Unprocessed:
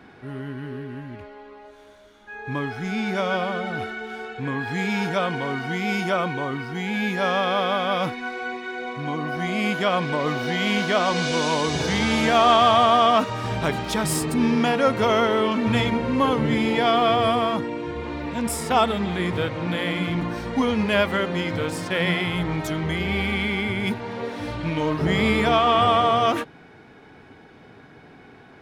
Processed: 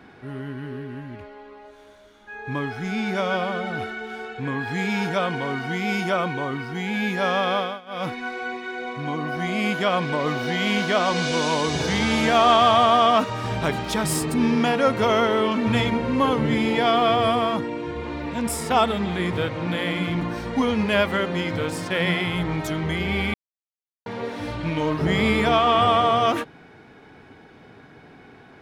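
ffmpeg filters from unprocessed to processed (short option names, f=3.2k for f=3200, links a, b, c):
-filter_complex "[0:a]asplit=5[a][b][c][d][e];[a]atrim=end=7.81,asetpts=PTS-STARTPTS,afade=t=out:st=7.55:d=0.26:silence=0.0841395[f];[b]atrim=start=7.81:end=7.86,asetpts=PTS-STARTPTS,volume=-21.5dB[g];[c]atrim=start=7.86:end=23.34,asetpts=PTS-STARTPTS,afade=t=in:d=0.26:silence=0.0841395,afade=t=out:st=15.476:d=0.004:c=hsin[h];[d]atrim=start=23.34:end=24.06,asetpts=PTS-STARTPTS,volume=0[i];[e]atrim=start=24.06,asetpts=PTS-STARTPTS,afade=t=in:d=0.004:c=hsin[j];[f][g][h][i][j]concat=n=5:v=0:a=1"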